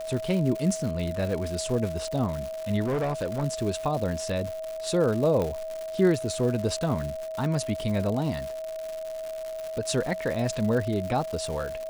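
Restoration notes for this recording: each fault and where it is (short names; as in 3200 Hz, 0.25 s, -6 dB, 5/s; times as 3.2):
crackle 210/s -31 dBFS
tone 640 Hz -32 dBFS
2.84–3.44 clipped -23.5 dBFS
5.42 pop -17 dBFS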